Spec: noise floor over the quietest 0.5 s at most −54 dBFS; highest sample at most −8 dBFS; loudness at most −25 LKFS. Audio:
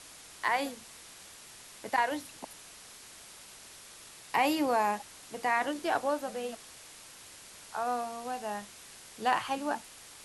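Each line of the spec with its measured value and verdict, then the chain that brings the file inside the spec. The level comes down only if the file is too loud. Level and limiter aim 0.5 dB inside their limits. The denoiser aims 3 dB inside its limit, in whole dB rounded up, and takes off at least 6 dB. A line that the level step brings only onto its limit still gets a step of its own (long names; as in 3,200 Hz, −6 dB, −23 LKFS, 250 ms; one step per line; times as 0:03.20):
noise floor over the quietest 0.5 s −51 dBFS: out of spec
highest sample −14.5 dBFS: in spec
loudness −32.0 LKFS: in spec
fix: broadband denoise 6 dB, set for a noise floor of −51 dBFS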